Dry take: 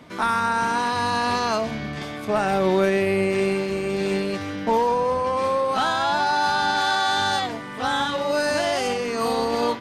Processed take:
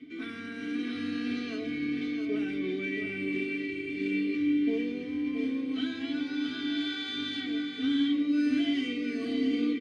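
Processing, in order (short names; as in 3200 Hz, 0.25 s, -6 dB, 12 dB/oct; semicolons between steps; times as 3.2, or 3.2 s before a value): low shelf 170 Hz +6.5 dB; comb 2.6 ms, depth 77%; reverse; upward compressor, threshold -25 dBFS; reverse; vowel filter i; echo 0.674 s -6.5 dB; on a send at -4 dB: reverb, pre-delay 3 ms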